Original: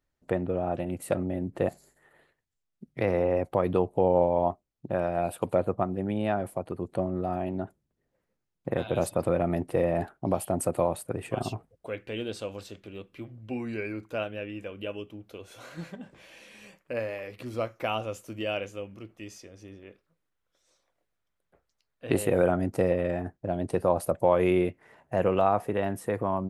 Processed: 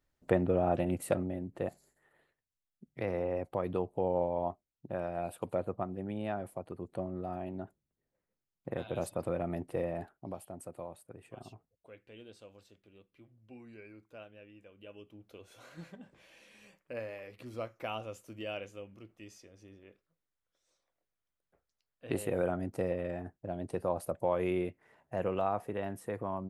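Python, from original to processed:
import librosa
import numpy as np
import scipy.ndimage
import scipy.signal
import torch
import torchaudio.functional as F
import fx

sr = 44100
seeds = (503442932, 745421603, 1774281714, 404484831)

y = fx.gain(x, sr, db=fx.line((0.93, 0.5), (1.47, -8.5), (9.79, -8.5), (10.56, -18.0), (14.74, -18.0), (15.25, -8.5)))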